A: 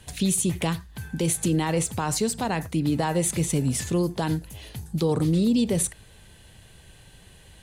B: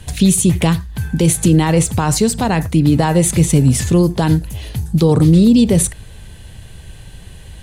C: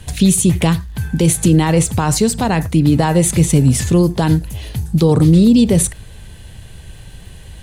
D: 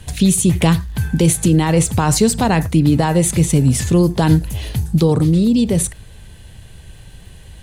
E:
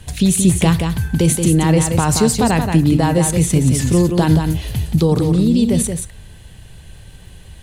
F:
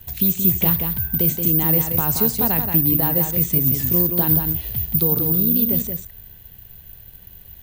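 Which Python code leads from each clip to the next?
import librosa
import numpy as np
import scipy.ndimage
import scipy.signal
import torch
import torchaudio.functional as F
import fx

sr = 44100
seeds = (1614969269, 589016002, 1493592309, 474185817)

y1 = fx.low_shelf(x, sr, hz=150.0, db=10.0)
y1 = y1 * 10.0 ** (8.5 / 20.0)
y2 = fx.dmg_crackle(y1, sr, seeds[0], per_s=77.0, level_db=-39.0)
y3 = fx.rider(y2, sr, range_db=4, speed_s=0.5)
y3 = y3 * 10.0 ** (-1.0 / 20.0)
y4 = y3 + 10.0 ** (-6.0 / 20.0) * np.pad(y3, (int(177 * sr / 1000.0), 0))[:len(y3)]
y4 = y4 * 10.0 ** (-1.0 / 20.0)
y5 = (np.kron(scipy.signal.resample_poly(y4, 1, 3), np.eye(3)[0]) * 3)[:len(y4)]
y5 = y5 * 10.0 ** (-9.0 / 20.0)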